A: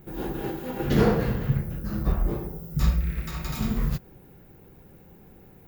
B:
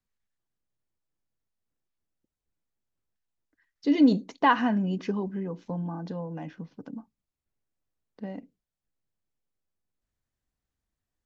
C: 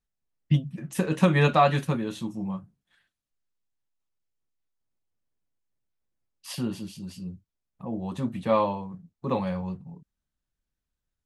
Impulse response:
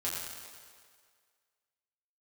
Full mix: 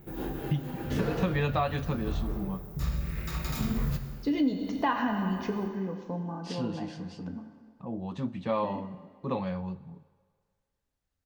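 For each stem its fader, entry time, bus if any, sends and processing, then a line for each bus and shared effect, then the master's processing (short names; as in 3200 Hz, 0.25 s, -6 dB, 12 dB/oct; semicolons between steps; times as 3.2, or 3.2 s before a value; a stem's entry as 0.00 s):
-3.0 dB, 0.00 s, send -10 dB, auto duck -13 dB, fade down 0.85 s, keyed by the third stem
-5.0 dB, 0.40 s, send -4 dB, dry
-4.0 dB, 0.00 s, send -21.5 dB, LPF 6200 Hz 24 dB/oct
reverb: on, RT60 1.9 s, pre-delay 5 ms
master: compressor 3:1, threshold -25 dBFS, peak gain reduction 9.5 dB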